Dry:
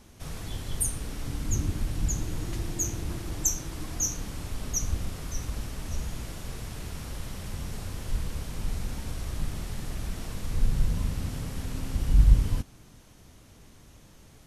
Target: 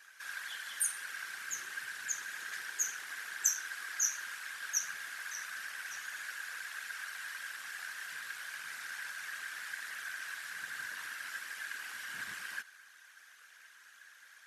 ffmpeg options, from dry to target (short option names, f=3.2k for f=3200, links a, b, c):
-af "aeval=exprs='val(0)*sin(2*PI*45*n/s)':c=same,afftfilt=real='hypot(re,im)*cos(2*PI*random(0))':imag='hypot(re,im)*sin(2*PI*random(1))':win_size=512:overlap=0.75,highpass=f=1.6k:t=q:w=10,volume=5.5dB"